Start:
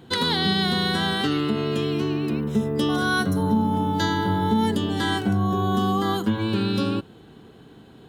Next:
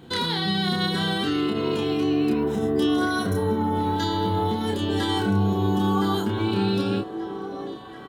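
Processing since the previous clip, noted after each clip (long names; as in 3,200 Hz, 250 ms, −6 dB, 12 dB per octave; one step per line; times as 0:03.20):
brickwall limiter −18 dBFS, peak gain reduction 6.5 dB
double-tracking delay 30 ms −3 dB
echo through a band-pass that steps 734 ms, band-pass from 410 Hz, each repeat 0.7 octaves, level −4 dB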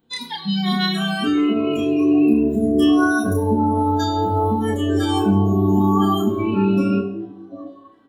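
noise reduction from a noise print of the clip's start 25 dB
on a send at −6 dB: high-shelf EQ 9,900 Hz +5 dB + convolution reverb RT60 0.80 s, pre-delay 3 ms
on the sum: level +5 dB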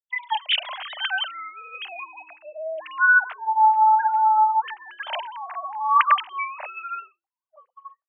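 three sine waves on the formant tracks
Chebyshev high-pass filter 600 Hz, order 6
downward expander −38 dBFS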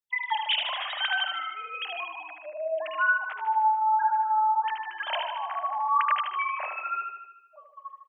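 downward compressor 3 to 1, threshold −25 dBFS, peak gain reduction 10 dB
on a send: repeating echo 76 ms, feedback 59%, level −5.5 dB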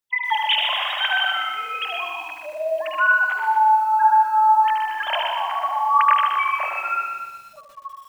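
feedback echo at a low word length 122 ms, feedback 55%, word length 9 bits, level −5.5 dB
level +6 dB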